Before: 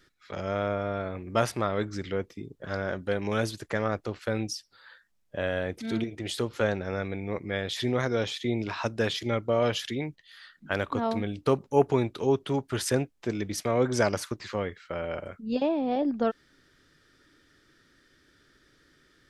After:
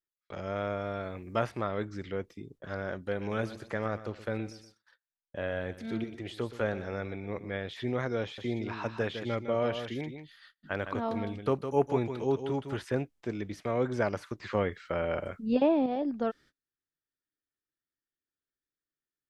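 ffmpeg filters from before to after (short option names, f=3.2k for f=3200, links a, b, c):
-filter_complex "[0:a]asettb=1/sr,asplit=3[a][b][c];[a]atrim=end=0.564[d];[b]atrim=start=0.56:end=1.39,asetpts=PTS-STARTPTS,afade=t=in:d=0.004:c=qsin,afade=t=out:st=0.826:d=0.004:c=qsin,highshelf=f=4.1k:g=10[e];[c]atrim=start=1.386[f];[d][e]acrossfade=d=0.004:c1=hsin:c2=qsin[g];[g][f]acrossfade=d=0.004:c1=qsin:c2=hsin,asettb=1/sr,asplit=3[h][i][j];[h]atrim=end=3.074[k];[i]atrim=start=3.07:end=7.57,asetpts=PTS-STARTPTS,afade=t=in:d=0.004:c=qsin,afade=t=out:st=4.496:d=0.004:c=qsin,aecho=1:1:121|242|363:0.188|0.0678|0.0244,atrim=end_sample=198450[l];[j]atrim=start=7.566[m];[k][l]acrossfade=d=0.004:c1=hsin:c2=qsin[n];[n][m]acrossfade=d=0.004:c1=qsin:c2=hsin,asettb=1/sr,asplit=3[o][p][q];[o]atrim=end=8.224[r];[p]atrim=start=8.22:end=12.84,asetpts=PTS-STARTPTS,afade=t=in:d=0.004:c=qsin,afade=t=out:st=4.616:d=0.004:c=qsin,aecho=1:1:158:0.376,atrim=end_sample=203742[s];[q]atrim=start=12.836[t];[r][s]acrossfade=d=0.004:c1=hsin:c2=qsin[u];[u][t]acrossfade=d=0.004:c1=qsin:c2=hsin,asplit=3[v][w][x];[v]atrim=end=14.432[y];[w]atrim=start=14.428:end=15.862,asetpts=PTS-STARTPTS,volume=6.5dB[z];[x]atrim=start=15.858[aa];[y][z]acrossfade=d=0.004:c1=hsin:c2=hsin[ab];[ab][aa]acrossfade=d=0.004:c1=hsin:c2=hsin,agate=range=-33dB:threshold=-49dB:ratio=16:detection=peak,acrossover=split=3000[ac][ad];[ad]acompressor=threshold=-51dB:ratio=4:attack=1:release=60[ae];[ac][ae]amix=inputs=2:normalize=0,volume=-4.5dB"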